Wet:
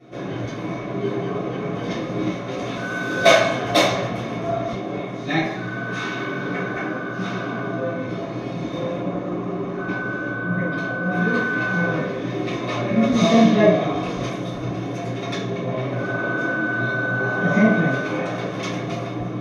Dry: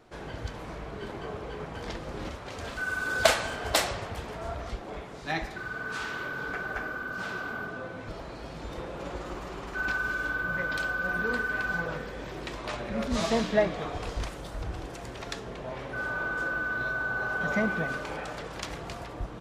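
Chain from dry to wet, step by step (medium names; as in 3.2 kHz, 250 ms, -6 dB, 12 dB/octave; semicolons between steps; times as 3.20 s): 8.99–11.11 s: treble shelf 2 kHz -11.5 dB; reverberation RT60 0.60 s, pre-delay 3 ms, DRR -12.5 dB; trim -10.5 dB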